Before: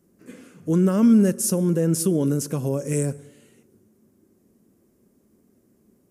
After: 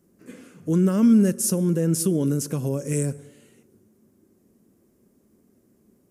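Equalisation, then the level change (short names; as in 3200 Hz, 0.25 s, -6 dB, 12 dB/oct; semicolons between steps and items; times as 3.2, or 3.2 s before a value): dynamic EQ 760 Hz, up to -4 dB, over -32 dBFS, Q 0.77; 0.0 dB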